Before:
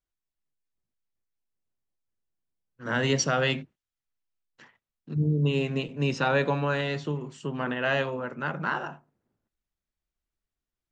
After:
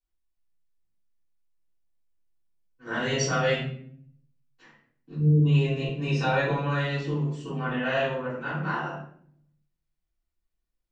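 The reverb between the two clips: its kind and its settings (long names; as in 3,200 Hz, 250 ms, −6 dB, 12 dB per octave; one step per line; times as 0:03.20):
rectangular room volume 95 cubic metres, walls mixed, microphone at 3.4 metres
level −13 dB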